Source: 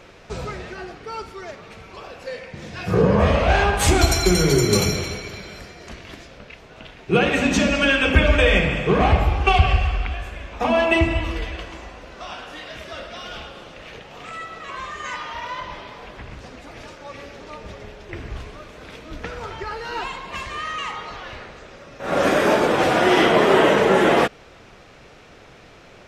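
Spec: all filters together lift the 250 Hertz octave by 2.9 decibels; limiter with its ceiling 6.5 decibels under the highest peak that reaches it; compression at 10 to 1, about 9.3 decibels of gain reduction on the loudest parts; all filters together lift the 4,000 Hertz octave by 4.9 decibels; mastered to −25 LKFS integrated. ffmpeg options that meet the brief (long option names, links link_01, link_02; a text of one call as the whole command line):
ffmpeg -i in.wav -af "equalizer=frequency=250:width_type=o:gain=4,equalizer=frequency=4000:width_type=o:gain=6.5,acompressor=threshold=-19dB:ratio=10,volume=2.5dB,alimiter=limit=-12.5dB:level=0:latency=1" out.wav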